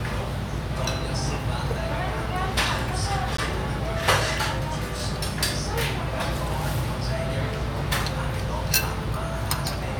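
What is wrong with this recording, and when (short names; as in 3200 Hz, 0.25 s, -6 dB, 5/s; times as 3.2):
3.37–3.38 gap 14 ms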